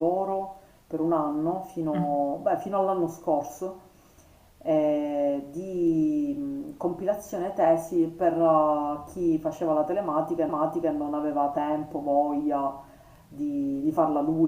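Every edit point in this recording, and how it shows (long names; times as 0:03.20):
0:10.49: the same again, the last 0.45 s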